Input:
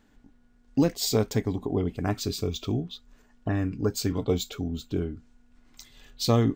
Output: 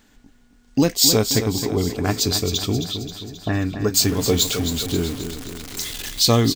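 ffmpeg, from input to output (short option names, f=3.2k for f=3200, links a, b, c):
-filter_complex "[0:a]asettb=1/sr,asplit=3[a][b][c];[a]atrim=end=3.944[d];[b]atrim=start=3.94:end=6.22,asetpts=PTS-STARTPTS,afade=t=in:d=0.004:c=qsin,afade=t=out:st=2.276:d=0.004:c=qsin,aeval=exprs='val(0)+0.5*0.0141*sgn(val(0))':c=same[e];[c]atrim=start=6.216[f];[d][e]acrossfade=d=0.004:c1=hsin:c2=qsin[g];[g][f]acrossfade=d=0.004:c1=qsin:c2=hsin,highshelf=f=2.2k:g=10.5,aecho=1:1:266|532|798|1064|1330|1596:0.355|0.195|0.107|0.059|0.0325|0.0179,volume=4.5dB"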